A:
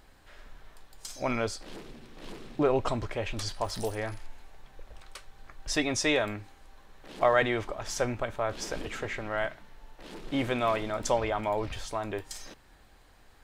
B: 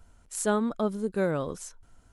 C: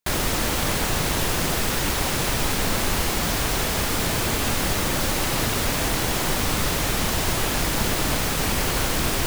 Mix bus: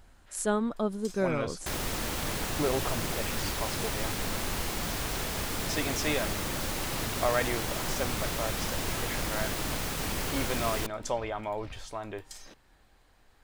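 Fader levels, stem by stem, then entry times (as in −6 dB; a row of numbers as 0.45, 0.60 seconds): −4.5, −2.0, −9.5 decibels; 0.00, 0.00, 1.60 seconds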